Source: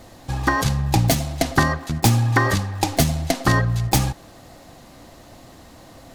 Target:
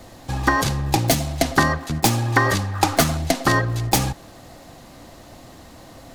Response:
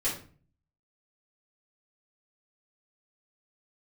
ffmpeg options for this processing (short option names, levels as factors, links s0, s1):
-filter_complex "[0:a]asettb=1/sr,asplit=3[s0][s1][s2];[s0]atrim=end=2.744[s3];[s1]atrim=start=2.74:end=3.17,asetpts=PTS-STARTPTS,afade=t=in:d=0.004:c=qsin,afade=t=out:st=0.426:d=0.004:c=qsin,equalizer=f=1300:t=o:w=0.69:g=12[s4];[s2]atrim=start=3.166[s5];[s3][s4]acrossfade=d=0.004:c1=hsin:c2=qsin[s6];[s6][s5]acrossfade=d=0.004:c1=qsin:c2=hsin,acrossover=split=210|1800[s7][s8][s9];[s7]asoftclip=type=hard:threshold=0.0596[s10];[s10][s8][s9]amix=inputs=3:normalize=0,volume=1.19"